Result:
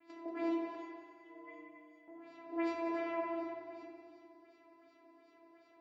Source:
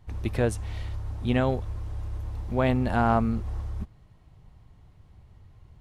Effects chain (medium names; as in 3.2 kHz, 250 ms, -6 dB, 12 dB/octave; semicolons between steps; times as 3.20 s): bass shelf 390 Hz -8.5 dB; compression 1.5:1, threshold -54 dBFS, peak gain reduction 12 dB; peak limiter -32 dBFS, peak gain reduction 8 dB; flange 0.37 Hz, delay 3.9 ms, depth 1.5 ms, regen -27%; vocoder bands 4, saw 335 Hz; 0.75–2.08 s: inharmonic resonator 150 Hz, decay 0.49 s, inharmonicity 0.008; LFO low-pass sine 2.7 Hz 590–5300 Hz; multi-head delay 91 ms, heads all three, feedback 42%, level -11.5 dB; FDN reverb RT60 2 s, low-frequency decay 0.7×, high-frequency decay 0.3×, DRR -4 dB; trim +4.5 dB